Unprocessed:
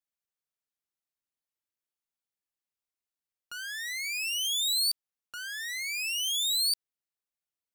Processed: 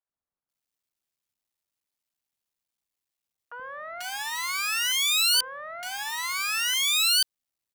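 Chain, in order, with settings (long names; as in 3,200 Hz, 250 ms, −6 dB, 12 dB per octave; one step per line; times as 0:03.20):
sub-harmonics by changed cycles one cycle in 3, muted
three-band delay without the direct sound mids, lows, highs 80/490 ms, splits 460/1,500 Hz
level +7.5 dB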